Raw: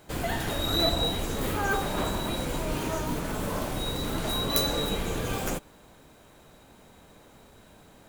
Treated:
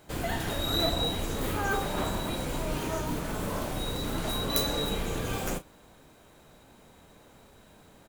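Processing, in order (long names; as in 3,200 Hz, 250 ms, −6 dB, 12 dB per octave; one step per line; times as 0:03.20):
double-tracking delay 34 ms −12 dB
level −2 dB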